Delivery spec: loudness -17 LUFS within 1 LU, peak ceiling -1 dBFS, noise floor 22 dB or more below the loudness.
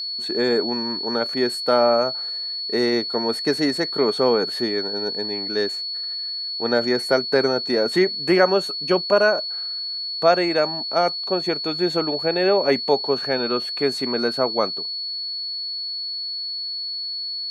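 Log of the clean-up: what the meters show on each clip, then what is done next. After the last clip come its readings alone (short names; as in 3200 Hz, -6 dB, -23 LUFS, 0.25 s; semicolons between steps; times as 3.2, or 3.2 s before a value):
steady tone 4400 Hz; tone level -26 dBFS; loudness -21.5 LUFS; peak -3.5 dBFS; loudness target -17.0 LUFS
-> notch 4400 Hz, Q 30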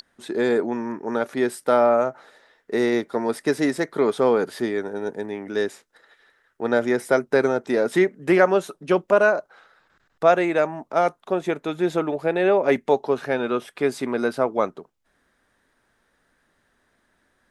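steady tone none; loudness -22.5 LUFS; peak -4.5 dBFS; loudness target -17.0 LUFS
-> gain +5.5 dB; limiter -1 dBFS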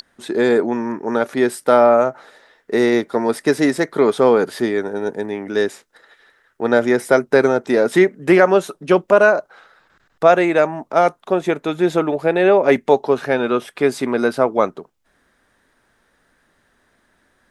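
loudness -17.0 LUFS; peak -1.0 dBFS; noise floor -63 dBFS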